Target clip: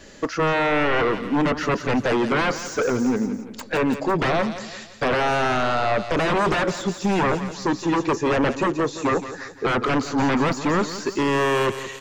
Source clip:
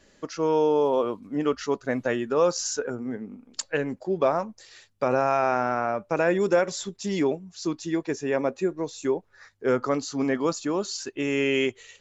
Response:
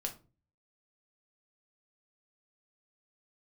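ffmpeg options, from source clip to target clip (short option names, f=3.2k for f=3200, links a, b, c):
-filter_complex "[0:a]aeval=exprs='0.316*sin(PI/2*6.31*val(0)/0.316)':c=same,aecho=1:1:170|340|510|680:0.224|0.0963|0.0414|0.0178,acrossover=split=2500[a][b];[b]acompressor=threshold=-31dB:ratio=4:attack=1:release=60[c];[a][c]amix=inputs=2:normalize=0,volume=-6.5dB"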